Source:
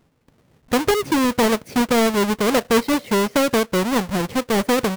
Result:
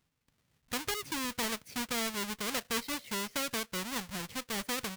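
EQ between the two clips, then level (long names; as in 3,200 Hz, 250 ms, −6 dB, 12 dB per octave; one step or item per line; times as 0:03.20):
guitar amp tone stack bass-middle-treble 5-5-5
−2.0 dB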